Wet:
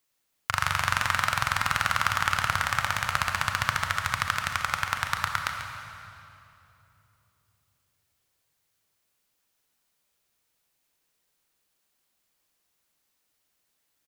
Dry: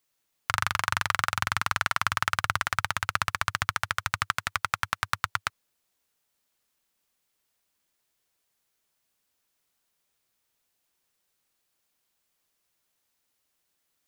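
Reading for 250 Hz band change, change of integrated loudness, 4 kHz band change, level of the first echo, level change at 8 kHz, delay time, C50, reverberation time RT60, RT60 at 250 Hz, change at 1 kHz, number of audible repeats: +2.5 dB, +1.5 dB, +2.0 dB, -10.0 dB, +1.5 dB, 140 ms, 3.5 dB, 3.0 s, 3.7 s, +1.5 dB, 1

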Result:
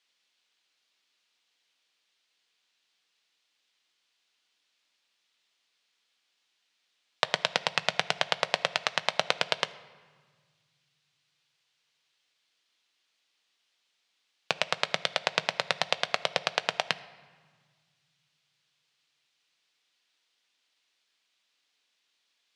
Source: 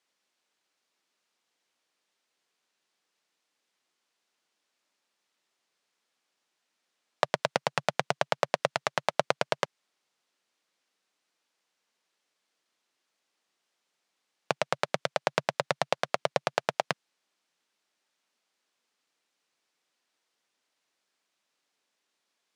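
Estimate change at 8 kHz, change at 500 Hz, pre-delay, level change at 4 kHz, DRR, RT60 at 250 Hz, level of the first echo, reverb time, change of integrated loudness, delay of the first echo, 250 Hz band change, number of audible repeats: +2.0 dB, -4.0 dB, 4 ms, +7.5 dB, 12.0 dB, 2.2 s, no echo, 1.6 s, +1.5 dB, no echo, -4.0 dB, no echo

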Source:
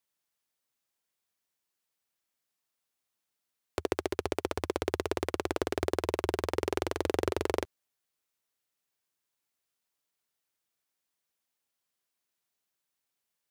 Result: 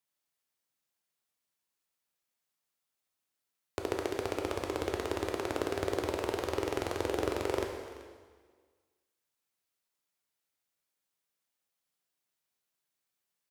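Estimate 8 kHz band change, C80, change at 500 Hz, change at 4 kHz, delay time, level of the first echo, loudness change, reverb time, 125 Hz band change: -1.5 dB, 5.5 dB, -1.5 dB, -1.5 dB, 383 ms, -18.0 dB, -1.5 dB, 1.6 s, -2.0 dB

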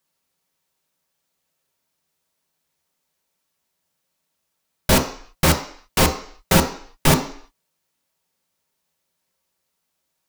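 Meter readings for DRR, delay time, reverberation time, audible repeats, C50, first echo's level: 2.0 dB, no echo, 0.55 s, no echo, 10.0 dB, no echo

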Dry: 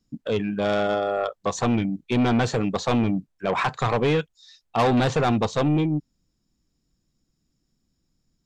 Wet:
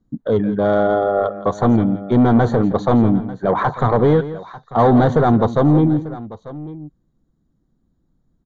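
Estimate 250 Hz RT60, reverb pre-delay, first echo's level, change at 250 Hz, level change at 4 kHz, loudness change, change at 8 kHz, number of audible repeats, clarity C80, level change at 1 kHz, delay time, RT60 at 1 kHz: no reverb, no reverb, -14.0 dB, +8.0 dB, -6.5 dB, +7.5 dB, under -10 dB, 2, no reverb, +6.5 dB, 169 ms, no reverb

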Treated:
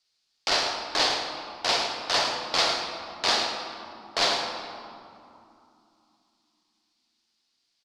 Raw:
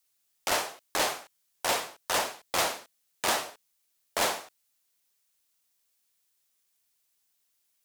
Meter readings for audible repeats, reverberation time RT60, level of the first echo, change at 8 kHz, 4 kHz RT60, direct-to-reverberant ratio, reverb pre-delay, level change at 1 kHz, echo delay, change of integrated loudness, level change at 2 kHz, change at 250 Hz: 1, 2.8 s, -9.5 dB, -1.5 dB, 1.5 s, 2.0 dB, 3 ms, +3.0 dB, 107 ms, +4.0 dB, +3.5 dB, +3.5 dB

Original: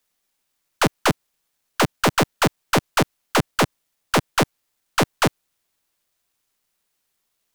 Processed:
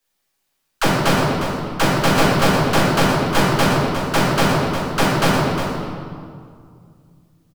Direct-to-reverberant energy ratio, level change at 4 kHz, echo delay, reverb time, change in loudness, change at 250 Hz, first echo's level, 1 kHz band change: -8.0 dB, +4.0 dB, 356 ms, 2.2 s, +4.5 dB, +6.0 dB, -8.5 dB, +5.0 dB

